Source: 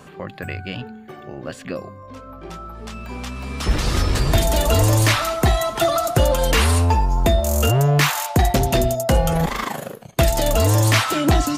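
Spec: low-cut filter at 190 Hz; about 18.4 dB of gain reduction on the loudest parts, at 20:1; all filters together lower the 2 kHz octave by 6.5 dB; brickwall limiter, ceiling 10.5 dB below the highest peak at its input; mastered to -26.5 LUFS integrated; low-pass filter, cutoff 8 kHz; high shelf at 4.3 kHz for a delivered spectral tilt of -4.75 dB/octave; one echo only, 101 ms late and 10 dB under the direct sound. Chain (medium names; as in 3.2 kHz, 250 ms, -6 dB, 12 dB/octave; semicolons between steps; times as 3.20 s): high-pass 190 Hz; low-pass 8 kHz; peaking EQ 2 kHz -7.5 dB; treble shelf 4.3 kHz -4 dB; compression 20:1, threshold -34 dBFS; peak limiter -30 dBFS; delay 101 ms -10 dB; trim +13 dB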